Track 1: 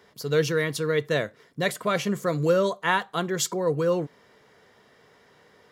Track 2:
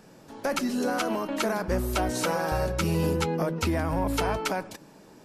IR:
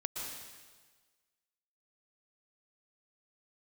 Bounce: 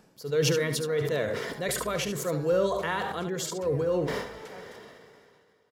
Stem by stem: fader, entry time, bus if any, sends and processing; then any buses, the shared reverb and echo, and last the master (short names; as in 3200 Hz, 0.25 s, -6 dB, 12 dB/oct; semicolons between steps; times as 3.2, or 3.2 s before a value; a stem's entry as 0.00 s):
-9.0 dB, 0.00 s, no send, echo send -9 dB, gate with hold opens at -44 dBFS; bell 470 Hz +5.5 dB 0.63 oct; sustainer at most 25 dB/s
-4.5 dB, 0.00 s, no send, no echo send, limiter -23 dBFS, peak gain reduction 8 dB; auto duck -11 dB, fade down 0.20 s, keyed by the first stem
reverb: off
echo: echo 72 ms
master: dry